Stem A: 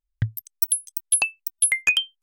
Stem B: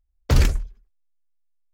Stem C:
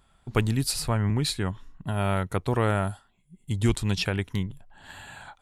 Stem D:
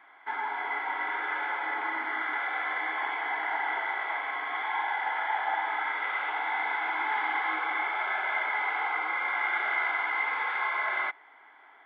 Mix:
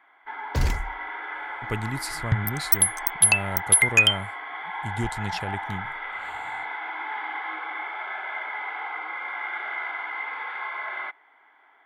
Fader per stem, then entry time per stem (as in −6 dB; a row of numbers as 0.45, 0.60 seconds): +2.5, −7.0, −6.0, −3.0 decibels; 2.10, 0.25, 1.35, 0.00 seconds